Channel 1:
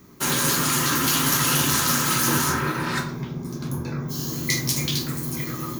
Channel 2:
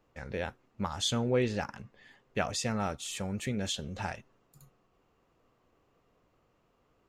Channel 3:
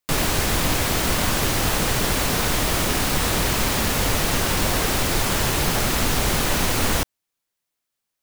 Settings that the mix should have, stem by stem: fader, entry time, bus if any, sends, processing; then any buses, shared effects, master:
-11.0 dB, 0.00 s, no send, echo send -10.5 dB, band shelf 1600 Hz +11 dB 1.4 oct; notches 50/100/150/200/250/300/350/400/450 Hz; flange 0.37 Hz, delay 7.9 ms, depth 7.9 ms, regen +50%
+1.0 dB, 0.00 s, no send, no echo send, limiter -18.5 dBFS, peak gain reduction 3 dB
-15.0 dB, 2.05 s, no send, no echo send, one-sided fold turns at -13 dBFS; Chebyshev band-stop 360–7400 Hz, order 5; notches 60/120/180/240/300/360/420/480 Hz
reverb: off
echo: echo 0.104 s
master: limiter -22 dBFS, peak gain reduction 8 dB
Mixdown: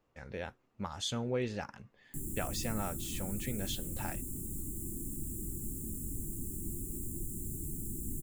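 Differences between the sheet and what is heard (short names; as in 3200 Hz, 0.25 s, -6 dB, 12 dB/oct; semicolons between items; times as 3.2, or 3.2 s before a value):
stem 1: muted; stem 2 +1.0 dB -> -5.5 dB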